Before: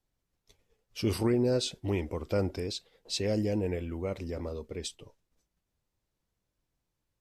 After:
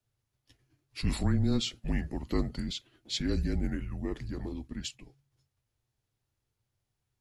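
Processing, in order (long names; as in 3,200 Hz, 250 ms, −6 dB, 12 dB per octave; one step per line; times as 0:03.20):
formants moved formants −2 semitones
frequency shifter −140 Hz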